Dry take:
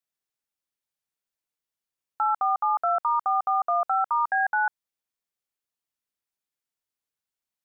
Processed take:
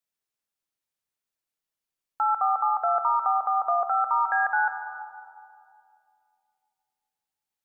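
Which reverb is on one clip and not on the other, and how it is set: algorithmic reverb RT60 2.6 s, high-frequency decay 0.3×, pre-delay 65 ms, DRR 8 dB

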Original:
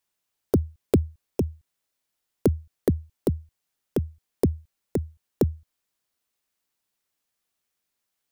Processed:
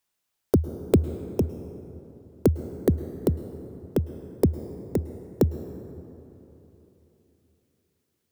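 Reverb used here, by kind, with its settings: plate-style reverb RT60 3.5 s, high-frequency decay 0.45×, pre-delay 95 ms, DRR 11.5 dB; trim +1 dB

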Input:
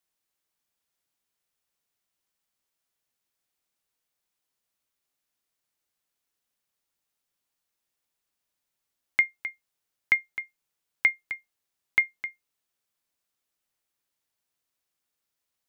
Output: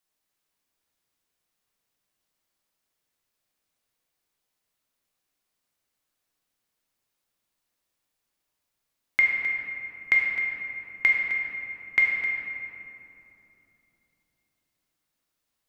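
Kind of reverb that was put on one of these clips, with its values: simulated room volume 140 m³, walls hard, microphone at 0.51 m

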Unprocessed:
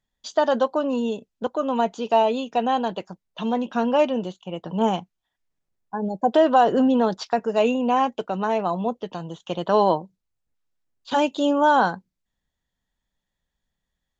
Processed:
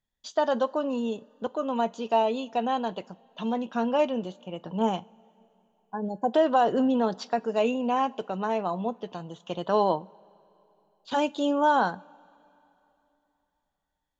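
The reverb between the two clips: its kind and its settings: two-slope reverb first 0.29 s, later 3.2 s, from -19 dB, DRR 18 dB; trim -5 dB

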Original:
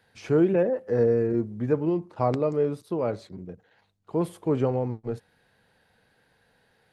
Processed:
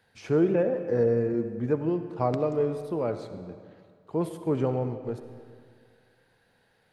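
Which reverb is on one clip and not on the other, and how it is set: algorithmic reverb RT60 2.1 s, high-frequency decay 0.8×, pre-delay 25 ms, DRR 9.5 dB; trim -2 dB

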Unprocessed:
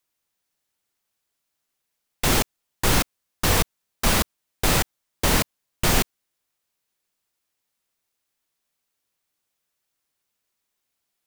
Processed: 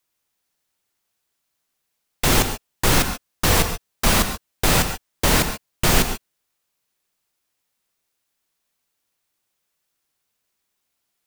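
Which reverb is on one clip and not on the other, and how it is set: gated-style reverb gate 160 ms rising, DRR 8 dB; trim +2.5 dB

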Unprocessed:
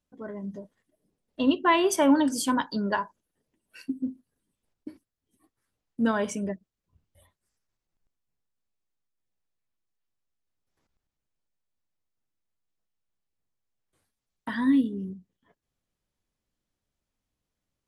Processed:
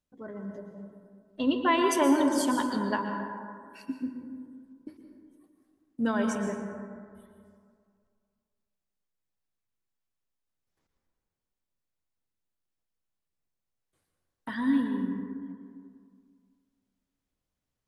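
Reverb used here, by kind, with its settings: plate-style reverb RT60 2.1 s, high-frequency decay 0.35×, pre-delay 105 ms, DRR 3.5 dB; trim -3.5 dB

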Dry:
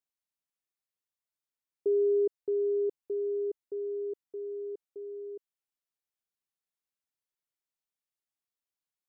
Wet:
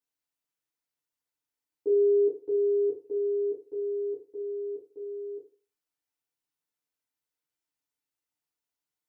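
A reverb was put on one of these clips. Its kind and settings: FDN reverb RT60 0.37 s, low-frequency decay 0.95×, high-frequency decay 0.75×, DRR -5.5 dB; trim -4 dB

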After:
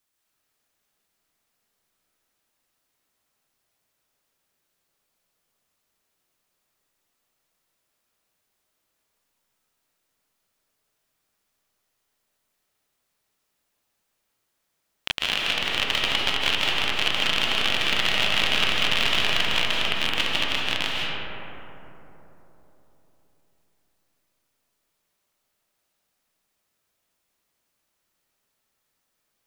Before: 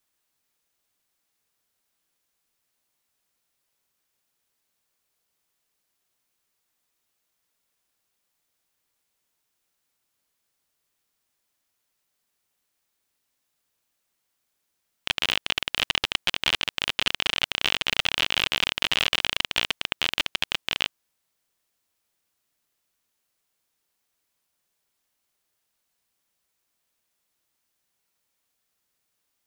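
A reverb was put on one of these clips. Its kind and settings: algorithmic reverb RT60 3.8 s, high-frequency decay 0.3×, pre-delay 115 ms, DRR -4 dB; trim -1.5 dB

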